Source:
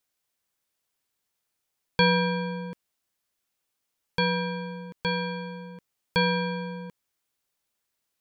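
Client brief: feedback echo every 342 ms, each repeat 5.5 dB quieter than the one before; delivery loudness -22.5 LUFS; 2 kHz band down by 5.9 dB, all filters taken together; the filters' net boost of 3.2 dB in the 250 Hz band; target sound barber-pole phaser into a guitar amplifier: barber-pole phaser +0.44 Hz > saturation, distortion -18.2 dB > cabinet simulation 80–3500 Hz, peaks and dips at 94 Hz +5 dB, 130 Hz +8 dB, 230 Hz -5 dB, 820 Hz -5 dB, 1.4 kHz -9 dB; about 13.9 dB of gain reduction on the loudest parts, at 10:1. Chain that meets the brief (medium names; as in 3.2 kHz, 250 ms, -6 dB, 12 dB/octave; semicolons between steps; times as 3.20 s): peaking EQ 250 Hz +6 dB; peaking EQ 2 kHz -4 dB; compression 10:1, threshold -30 dBFS; feedback delay 342 ms, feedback 53%, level -5.5 dB; barber-pole phaser +0.44 Hz; saturation -29 dBFS; cabinet simulation 80–3500 Hz, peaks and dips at 94 Hz +5 dB, 130 Hz +8 dB, 230 Hz -5 dB, 820 Hz -5 dB, 1.4 kHz -9 dB; trim +18 dB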